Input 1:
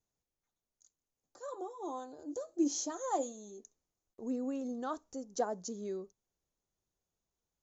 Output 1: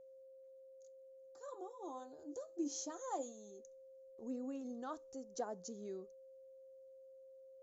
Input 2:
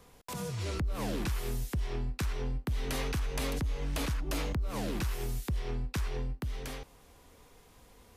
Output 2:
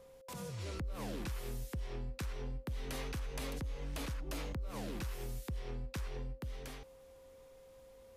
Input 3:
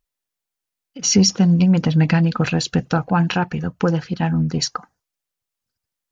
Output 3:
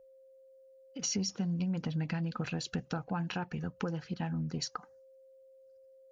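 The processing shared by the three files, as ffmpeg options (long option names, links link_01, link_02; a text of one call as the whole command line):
ffmpeg -i in.wav -af "aeval=exprs='val(0)+0.00355*sin(2*PI*530*n/s)':channel_layout=same,acompressor=threshold=-28dB:ratio=3,volume=-7dB" out.wav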